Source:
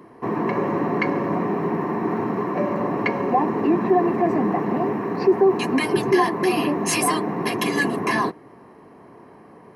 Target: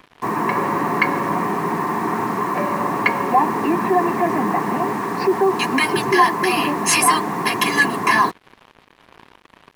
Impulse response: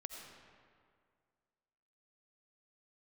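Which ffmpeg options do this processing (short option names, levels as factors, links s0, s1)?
-af "lowshelf=f=750:t=q:w=1.5:g=-6.5,acrusher=bits=6:mix=0:aa=0.5,volume=2.11"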